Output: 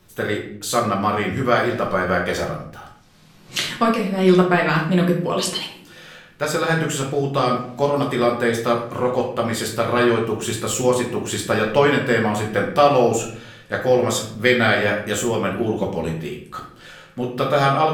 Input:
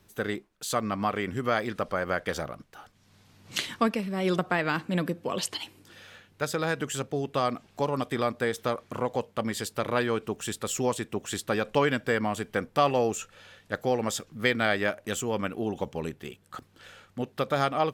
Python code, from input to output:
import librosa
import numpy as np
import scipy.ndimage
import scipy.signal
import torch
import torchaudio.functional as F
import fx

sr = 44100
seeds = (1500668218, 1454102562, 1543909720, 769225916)

y = fx.room_shoebox(x, sr, seeds[0], volume_m3=86.0, walls='mixed', distance_m=0.93)
y = F.gain(torch.from_numpy(y), 5.0).numpy()